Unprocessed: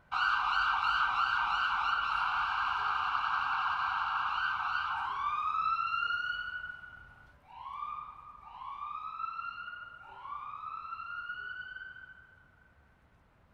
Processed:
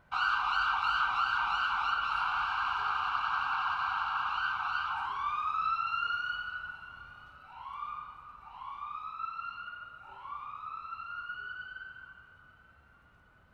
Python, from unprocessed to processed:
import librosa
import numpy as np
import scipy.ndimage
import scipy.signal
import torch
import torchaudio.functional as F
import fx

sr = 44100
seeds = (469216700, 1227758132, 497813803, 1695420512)

y = fx.echo_feedback(x, sr, ms=882, feedback_pct=51, wet_db=-20.0)